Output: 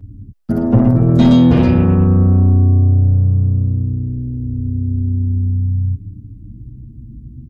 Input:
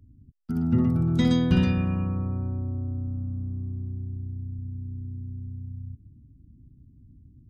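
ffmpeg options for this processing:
-filter_complex "[0:a]tiltshelf=f=970:g=4,asplit=2[a][b];[b]alimiter=limit=-16dB:level=0:latency=1,volume=-2dB[c];[a][c]amix=inputs=2:normalize=0,acontrast=84,aeval=exprs='0.841*sin(PI/2*1.41*val(0)/0.841)':c=same,asplit=2[d][e];[e]adelay=7.5,afreqshift=0.33[f];[d][f]amix=inputs=2:normalize=1,volume=-1.5dB"

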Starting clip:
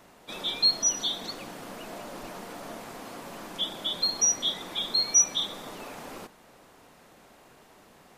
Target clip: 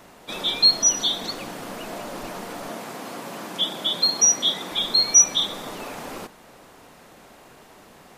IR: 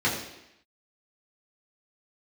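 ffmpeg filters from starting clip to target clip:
-filter_complex "[0:a]asettb=1/sr,asplit=3[a][b][c];[a]atrim=end=2.694[d];[b]atrim=start=2.69:end=4.72,asetpts=PTS-STARTPTS,afade=t=in:d=0.004:c=qsin,afade=t=out:st=2.026:d=0.004:c=qsin,highpass=f=120:w=0.5412,highpass=f=120:w=1.3066[e];[c]atrim=start=4.716[f];[d][e]acrossfade=d=0.004:c1=hsin:c2=qsin[g];[g][f]acrossfade=d=0.004:c1=qsin:c2=hsin,volume=6.5dB"

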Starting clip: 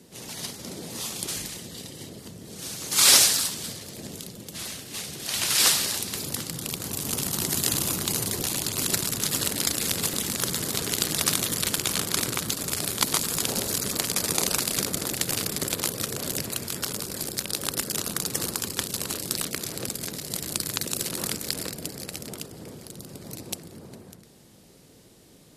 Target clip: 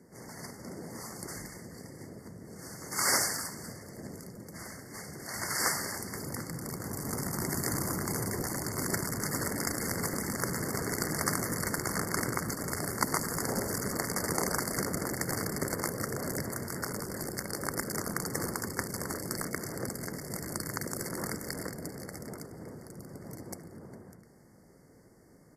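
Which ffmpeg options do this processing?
-af "afftfilt=real='re*(1-between(b*sr/4096,2200,4400))':imag='im*(1-between(b*sr/4096,2200,4400))':win_size=4096:overlap=0.75,dynaudnorm=f=980:g=13:m=11.5dB,highshelf=f=2.4k:t=q:w=1.5:g=-7.5,aecho=1:1:75:0.0708,volume=-4dB"

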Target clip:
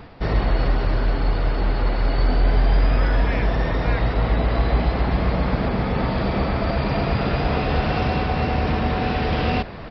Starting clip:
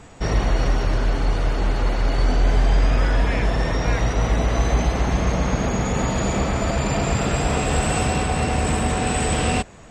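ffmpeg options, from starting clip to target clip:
-af "equalizer=f=3k:t=o:w=0.77:g=-2.5,areverse,acompressor=mode=upward:threshold=-24dB:ratio=2.5,areverse,aresample=11025,aresample=44100"

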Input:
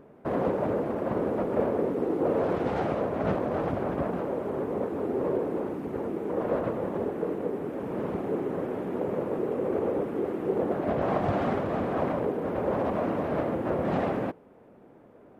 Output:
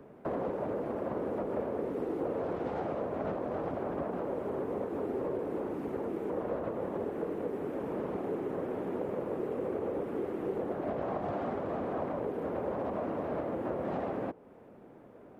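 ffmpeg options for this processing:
-filter_complex "[0:a]acrossover=split=95|230|1300[a][b][c][d];[a]acompressor=threshold=-54dB:ratio=4[e];[b]acompressor=threshold=-49dB:ratio=4[f];[c]acompressor=threshold=-33dB:ratio=4[g];[d]acompressor=threshold=-55dB:ratio=4[h];[e][f][g][h]amix=inputs=4:normalize=0"

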